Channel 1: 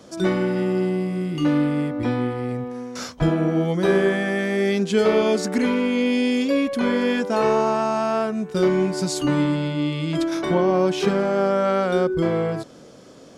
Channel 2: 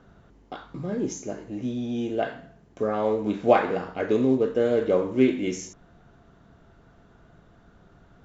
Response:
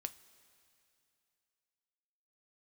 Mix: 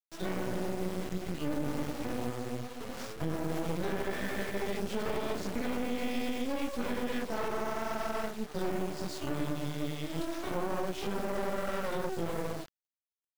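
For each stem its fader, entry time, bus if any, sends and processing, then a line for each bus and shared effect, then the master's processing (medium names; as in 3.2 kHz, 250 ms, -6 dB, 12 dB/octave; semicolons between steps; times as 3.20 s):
-4.5 dB, 0.00 s, no send, median filter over 5 samples; bit crusher 6-bit; detune thickener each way 56 cents
-13.0 dB, 0.00 s, no send, Schmitt trigger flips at -29 dBFS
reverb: none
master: half-wave rectifier; peak limiter -22 dBFS, peak gain reduction 8 dB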